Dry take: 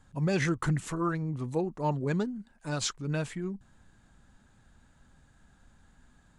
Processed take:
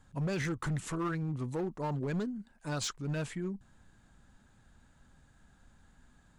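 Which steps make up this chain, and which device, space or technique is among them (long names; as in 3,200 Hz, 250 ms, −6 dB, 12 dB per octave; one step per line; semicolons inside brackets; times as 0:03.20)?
limiter into clipper (brickwall limiter −23 dBFS, peak gain reduction 6 dB; hard clipping −27.5 dBFS, distortion −16 dB)
level −1.5 dB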